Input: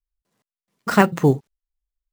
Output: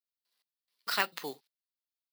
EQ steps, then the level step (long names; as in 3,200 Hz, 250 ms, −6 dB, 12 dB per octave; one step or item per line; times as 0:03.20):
high-pass filter 220 Hz 12 dB per octave
first difference
high shelf with overshoot 5,500 Hz −7 dB, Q 3
+2.0 dB